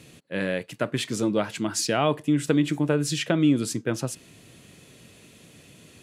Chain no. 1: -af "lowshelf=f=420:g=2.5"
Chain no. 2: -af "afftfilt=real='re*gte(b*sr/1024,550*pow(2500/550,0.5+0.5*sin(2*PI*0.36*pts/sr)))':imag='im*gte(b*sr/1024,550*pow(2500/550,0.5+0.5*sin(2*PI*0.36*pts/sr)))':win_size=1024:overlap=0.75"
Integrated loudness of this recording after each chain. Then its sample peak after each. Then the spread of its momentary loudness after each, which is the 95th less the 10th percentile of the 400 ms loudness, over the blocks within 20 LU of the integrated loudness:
-24.0, -32.0 LUFS; -6.0, -12.0 dBFS; 8, 13 LU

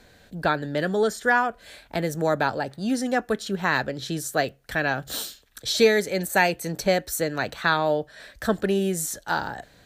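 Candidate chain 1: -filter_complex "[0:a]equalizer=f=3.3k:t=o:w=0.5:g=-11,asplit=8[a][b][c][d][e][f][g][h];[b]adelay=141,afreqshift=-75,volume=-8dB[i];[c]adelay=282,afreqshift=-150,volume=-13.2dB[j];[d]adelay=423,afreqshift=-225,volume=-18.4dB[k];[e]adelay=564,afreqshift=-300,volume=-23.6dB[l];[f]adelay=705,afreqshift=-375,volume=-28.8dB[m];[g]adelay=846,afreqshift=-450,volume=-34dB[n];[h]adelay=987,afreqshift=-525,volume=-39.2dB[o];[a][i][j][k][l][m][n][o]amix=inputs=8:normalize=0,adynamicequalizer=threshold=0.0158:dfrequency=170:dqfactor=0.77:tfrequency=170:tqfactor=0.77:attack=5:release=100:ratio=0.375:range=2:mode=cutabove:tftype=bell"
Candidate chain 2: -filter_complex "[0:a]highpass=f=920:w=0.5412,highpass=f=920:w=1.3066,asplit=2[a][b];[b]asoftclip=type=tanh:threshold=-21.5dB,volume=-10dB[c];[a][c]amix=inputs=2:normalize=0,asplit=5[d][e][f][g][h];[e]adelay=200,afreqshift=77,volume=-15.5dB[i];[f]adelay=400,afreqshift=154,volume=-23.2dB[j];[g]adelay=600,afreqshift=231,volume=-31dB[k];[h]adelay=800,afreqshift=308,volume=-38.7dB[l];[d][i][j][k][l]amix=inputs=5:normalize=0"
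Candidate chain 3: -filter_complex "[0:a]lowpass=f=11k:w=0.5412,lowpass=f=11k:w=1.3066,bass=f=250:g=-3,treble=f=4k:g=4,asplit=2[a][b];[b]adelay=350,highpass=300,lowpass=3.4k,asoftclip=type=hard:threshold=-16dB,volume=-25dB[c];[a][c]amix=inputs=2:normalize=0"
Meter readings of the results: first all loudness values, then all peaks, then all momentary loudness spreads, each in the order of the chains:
-25.0, -27.0, -25.0 LUFS; -6.5, -6.5, -6.5 dBFS; 9, 11, 9 LU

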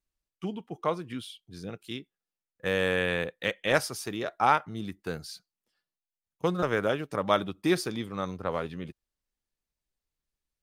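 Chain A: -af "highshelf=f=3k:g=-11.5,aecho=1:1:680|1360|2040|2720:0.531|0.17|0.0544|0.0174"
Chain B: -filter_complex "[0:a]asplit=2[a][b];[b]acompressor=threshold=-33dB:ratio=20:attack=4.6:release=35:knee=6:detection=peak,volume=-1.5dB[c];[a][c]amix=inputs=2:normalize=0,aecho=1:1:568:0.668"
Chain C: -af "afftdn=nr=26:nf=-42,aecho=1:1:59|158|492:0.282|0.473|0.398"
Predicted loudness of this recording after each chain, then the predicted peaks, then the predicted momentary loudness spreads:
-31.0, -27.0, -29.0 LUFS; -9.0, -6.5, -8.0 dBFS; 17, 13, 15 LU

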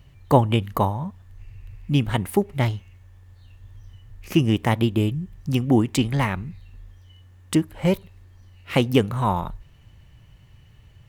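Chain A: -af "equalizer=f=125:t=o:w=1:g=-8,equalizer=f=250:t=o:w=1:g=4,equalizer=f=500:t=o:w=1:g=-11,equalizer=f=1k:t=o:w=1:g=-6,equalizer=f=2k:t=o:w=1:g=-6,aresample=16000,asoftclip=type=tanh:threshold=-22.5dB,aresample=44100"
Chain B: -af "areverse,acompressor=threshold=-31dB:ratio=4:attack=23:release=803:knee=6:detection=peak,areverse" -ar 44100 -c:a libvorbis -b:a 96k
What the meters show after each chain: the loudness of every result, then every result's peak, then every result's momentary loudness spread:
-31.5, -35.0 LUFS; -21.0, -19.0 dBFS; 21, 19 LU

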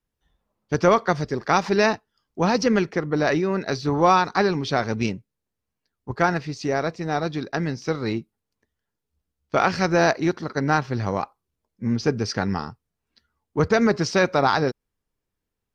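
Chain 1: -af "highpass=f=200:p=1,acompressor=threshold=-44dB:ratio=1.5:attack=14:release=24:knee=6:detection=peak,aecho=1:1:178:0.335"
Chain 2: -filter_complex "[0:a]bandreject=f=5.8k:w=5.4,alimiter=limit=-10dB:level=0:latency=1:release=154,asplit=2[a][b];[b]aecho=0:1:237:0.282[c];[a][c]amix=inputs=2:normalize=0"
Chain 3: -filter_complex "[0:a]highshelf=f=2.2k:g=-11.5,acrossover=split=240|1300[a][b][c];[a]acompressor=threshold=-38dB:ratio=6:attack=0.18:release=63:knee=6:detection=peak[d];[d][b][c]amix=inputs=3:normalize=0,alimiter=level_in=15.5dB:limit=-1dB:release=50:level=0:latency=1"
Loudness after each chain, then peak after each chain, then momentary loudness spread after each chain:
-31.0, -24.0, -13.5 LUFS; -12.0, -8.5, -1.0 dBFS; 12, 13, 9 LU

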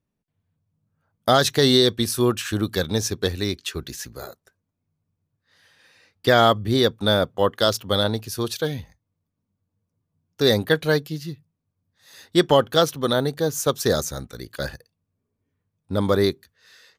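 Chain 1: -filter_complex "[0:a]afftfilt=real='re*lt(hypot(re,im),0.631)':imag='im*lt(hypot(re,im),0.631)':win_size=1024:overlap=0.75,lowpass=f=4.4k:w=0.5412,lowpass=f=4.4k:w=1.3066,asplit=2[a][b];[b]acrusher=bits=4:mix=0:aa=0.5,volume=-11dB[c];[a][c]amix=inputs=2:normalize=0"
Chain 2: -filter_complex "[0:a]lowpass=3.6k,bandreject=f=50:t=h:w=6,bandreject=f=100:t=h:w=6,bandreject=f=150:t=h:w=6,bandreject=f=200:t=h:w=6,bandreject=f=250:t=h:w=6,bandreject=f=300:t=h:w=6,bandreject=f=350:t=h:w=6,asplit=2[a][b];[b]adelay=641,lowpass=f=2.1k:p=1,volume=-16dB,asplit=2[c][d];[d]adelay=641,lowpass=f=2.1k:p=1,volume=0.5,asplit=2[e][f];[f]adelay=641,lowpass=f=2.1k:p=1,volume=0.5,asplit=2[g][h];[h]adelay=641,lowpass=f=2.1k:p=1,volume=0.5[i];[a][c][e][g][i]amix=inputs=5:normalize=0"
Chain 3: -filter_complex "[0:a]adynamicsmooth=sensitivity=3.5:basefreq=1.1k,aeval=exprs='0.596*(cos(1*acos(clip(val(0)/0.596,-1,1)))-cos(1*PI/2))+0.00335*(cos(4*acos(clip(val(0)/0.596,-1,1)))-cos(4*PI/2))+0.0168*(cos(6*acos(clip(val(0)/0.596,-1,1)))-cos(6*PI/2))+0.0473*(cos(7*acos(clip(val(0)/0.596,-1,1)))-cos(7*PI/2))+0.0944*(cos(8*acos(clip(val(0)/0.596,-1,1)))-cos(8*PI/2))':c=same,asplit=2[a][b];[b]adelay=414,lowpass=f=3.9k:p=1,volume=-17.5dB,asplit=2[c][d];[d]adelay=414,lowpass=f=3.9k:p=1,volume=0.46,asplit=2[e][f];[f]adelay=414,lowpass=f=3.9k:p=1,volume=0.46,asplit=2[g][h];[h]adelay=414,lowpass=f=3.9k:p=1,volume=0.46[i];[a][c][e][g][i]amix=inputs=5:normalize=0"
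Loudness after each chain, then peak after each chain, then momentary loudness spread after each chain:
-23.5, -22.5, -21.5 LUFS; -5.0, -4.5, -3.0 dBFS; 14, 19, 21 LU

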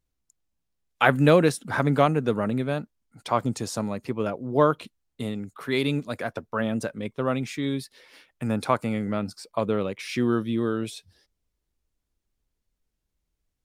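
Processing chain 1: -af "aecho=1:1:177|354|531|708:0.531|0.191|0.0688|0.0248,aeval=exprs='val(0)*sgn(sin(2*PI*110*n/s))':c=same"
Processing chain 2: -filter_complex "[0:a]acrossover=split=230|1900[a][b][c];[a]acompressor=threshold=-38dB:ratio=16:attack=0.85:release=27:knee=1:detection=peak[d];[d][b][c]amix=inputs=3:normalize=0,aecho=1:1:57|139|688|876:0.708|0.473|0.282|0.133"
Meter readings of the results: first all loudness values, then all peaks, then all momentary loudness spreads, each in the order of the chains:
-25.0, -25.0 LUFS; -2.5, -3.5 dBFS; 12, 14 LU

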